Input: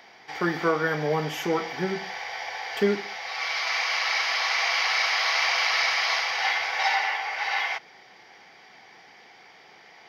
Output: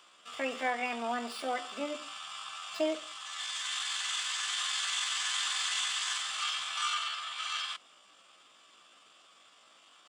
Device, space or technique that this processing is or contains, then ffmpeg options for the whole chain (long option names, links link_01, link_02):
chipmunk voice: -af "asetrate=68011,aresample=44100,atempo=0.64842,volume=-8.5dB"